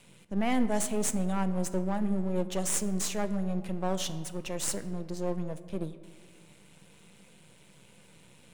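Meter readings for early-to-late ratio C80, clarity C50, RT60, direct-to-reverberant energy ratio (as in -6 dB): 15.0 dB, 13.5 dB, 1.7 s, 11.0 dB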